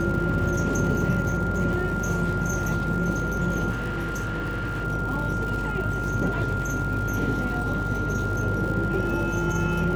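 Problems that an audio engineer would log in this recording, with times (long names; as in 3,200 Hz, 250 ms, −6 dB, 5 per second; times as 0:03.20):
mains buzz 50 Hz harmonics 21 −31 dBFS
surface crackle 150 per second −32 dBFS
whistle 1,400 Hz −29 dBFS
0:03.70–0:04.85: clipping −25 dBFS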